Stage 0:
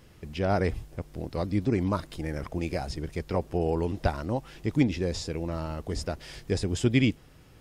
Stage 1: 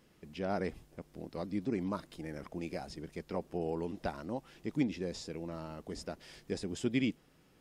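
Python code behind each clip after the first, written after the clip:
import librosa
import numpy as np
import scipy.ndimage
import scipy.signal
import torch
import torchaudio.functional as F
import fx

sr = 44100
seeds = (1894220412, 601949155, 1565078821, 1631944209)

y = fx.low_shelf_res(x, sr, hz=140.0, db=-8.0, q=1.5)
y = y * librosa.db_to_amplitude(-9.0)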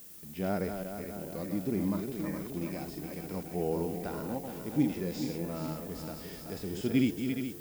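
y = fx.reverse_delay_fb(x, sr, ms=210, feedback_pct=71, wet_db=-7.5)
y = fx.hpss(y, sr, part='percussive', gain_db=-13)
y = fx.dmg_noise_colour(y, sr, seeds[0], colour='violet', level_db=-56.0)
y = y * librosa.db_to_amplitude(6.0)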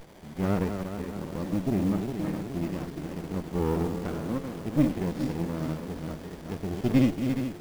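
y = fx.running_max(x, sr, window=33)
y = y * librosa.db_to_amplitude(5.0)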